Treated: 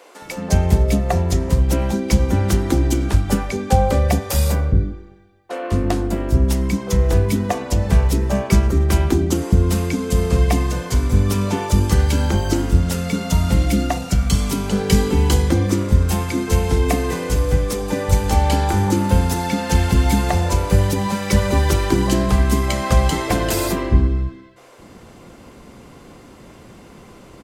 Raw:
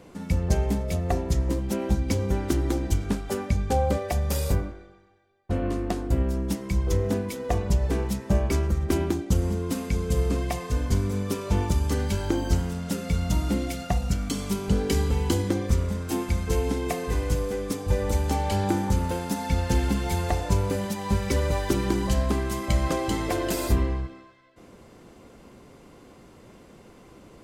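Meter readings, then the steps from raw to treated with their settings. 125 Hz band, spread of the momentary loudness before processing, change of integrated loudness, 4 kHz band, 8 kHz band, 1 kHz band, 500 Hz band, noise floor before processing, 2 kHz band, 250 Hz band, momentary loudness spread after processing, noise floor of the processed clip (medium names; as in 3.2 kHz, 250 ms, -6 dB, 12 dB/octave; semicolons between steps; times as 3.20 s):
+8.5 dB, 4 LU, +8.0 dB, +8.5 dB, +8.5 dB, +8.0 dB, +6.5 dB, -51 dBFS, +8.5 dB, +7.5 dB, 4 LU, -43 dBFS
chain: bands offset in time highs, lows 220 ms, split 420 Hz; trim +8.5 dB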